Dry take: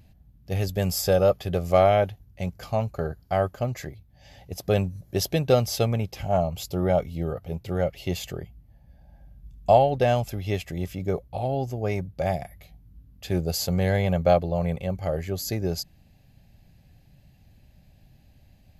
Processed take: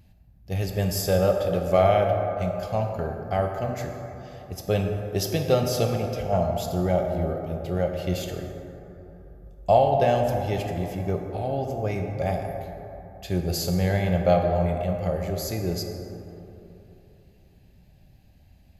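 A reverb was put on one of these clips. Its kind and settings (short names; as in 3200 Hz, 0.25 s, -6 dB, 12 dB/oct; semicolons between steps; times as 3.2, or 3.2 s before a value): plate-style reverb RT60 3.2 s, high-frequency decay 0.35×, DRR 2.5 dB; gain -2 dB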